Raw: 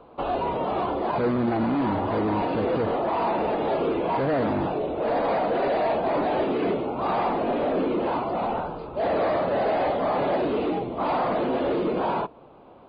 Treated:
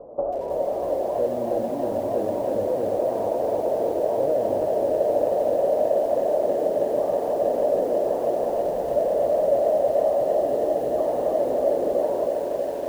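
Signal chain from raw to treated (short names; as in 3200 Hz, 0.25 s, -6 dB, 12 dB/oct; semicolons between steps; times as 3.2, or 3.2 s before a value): dynamic EQ 170 Hz, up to -4 dB, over -36 dBFS, Q 0.95; compressor 10:1, threshold -32 dBFS, peak gain reduction 11 dB; synth low-pass 580 Hz, resonance Q 6.1; multi-head echo 0.305 s, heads all three, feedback 73%, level -20 dB; lo-fi delay 0.321 s, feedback 80%, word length 8-bit, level -4.5 dB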